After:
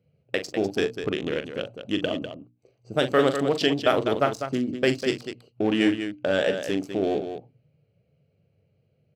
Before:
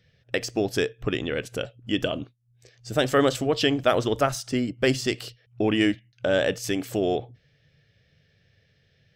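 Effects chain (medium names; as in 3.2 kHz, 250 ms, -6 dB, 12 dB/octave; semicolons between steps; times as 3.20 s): local Wiener filter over 25 samples; high-pass 110 Hz 12 dB/octave; hum notches 60/120/180/240/300 Hz; on a send: multi-tap echo 41/199 ms -9.5/-8.5 dB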